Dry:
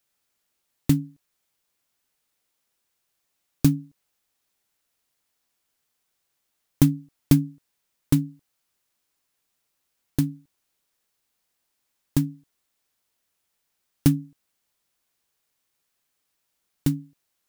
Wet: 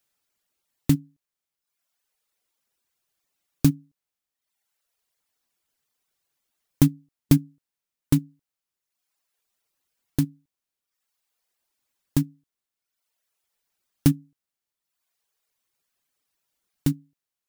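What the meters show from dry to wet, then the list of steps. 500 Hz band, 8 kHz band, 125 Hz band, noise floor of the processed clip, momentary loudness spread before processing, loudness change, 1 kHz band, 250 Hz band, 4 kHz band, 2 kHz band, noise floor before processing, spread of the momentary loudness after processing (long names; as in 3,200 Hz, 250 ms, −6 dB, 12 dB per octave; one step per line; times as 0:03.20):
0.0 dB, 0.0 dB, −0.5 dB, below −85 dBFS, 12 LU, 0.0 dB, 0.0 dB, −0.5 dB, 0.0 dB, 0.0 dB, −77 dBFS, 10 LU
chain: reverb reduction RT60 1.1 s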